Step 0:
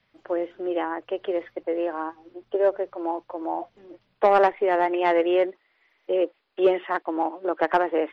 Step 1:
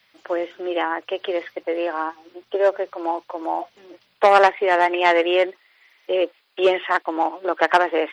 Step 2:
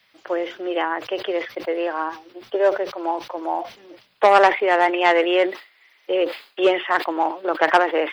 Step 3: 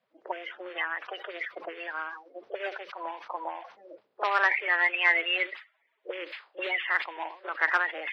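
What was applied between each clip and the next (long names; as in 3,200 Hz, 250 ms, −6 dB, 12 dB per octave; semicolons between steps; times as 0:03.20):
spectral tilt +3.5 dB per octave; level +6 dB
level that may fall only so fast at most 150 dB per second
spectral magnitudes quantised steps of 30 dB; echo ahead of the sound 39 ms −22 dB; envelope filter 390–2,200 Hz, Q 2.2, up, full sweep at −20.5 dBFS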